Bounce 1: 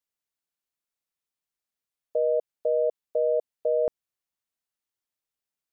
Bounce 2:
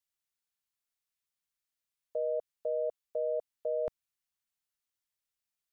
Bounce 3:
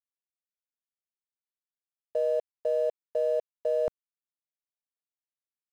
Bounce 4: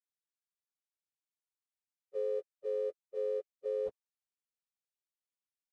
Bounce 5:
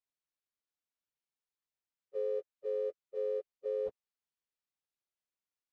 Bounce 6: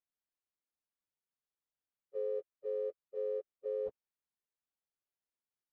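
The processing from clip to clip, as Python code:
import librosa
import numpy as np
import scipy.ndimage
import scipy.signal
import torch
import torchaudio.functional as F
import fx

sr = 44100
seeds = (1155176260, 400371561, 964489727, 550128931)

y1 = fx.peak_eq(x, sr, hz=390.0, db=-10.0, octaves=2.3)
y2 = np.sign(y1) * np.maximum(np.abs(y1) - 10.0 ** (-55.5 / 20.0), 0.0)
y2 = y2 * librosa.db_to_amplitude(6.0)
y3 = fx.partial_stretch(y2, sr, pct=82)
y3 = y3 * librosa.db_to_amplitude(-7.0)
y4 = fx.air_absorb(y3, sr, metres=64.0)
y5 = fx.high_shelf(y4, sr, hz=2300.0, db=-9.5)
y5 = y5 * librosa.db_to_amplitude(-1.5)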